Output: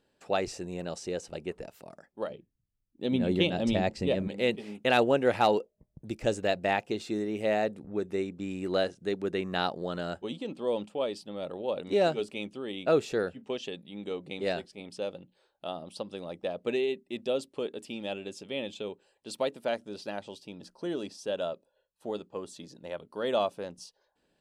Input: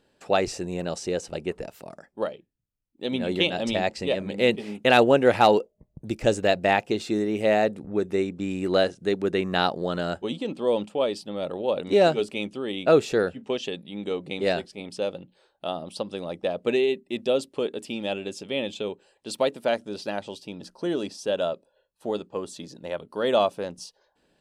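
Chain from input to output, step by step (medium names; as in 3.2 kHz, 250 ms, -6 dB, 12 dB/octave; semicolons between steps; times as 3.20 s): 2.30–4.28 s: bass shelf 350 Hz +11.5 dB; trim -6.5 dB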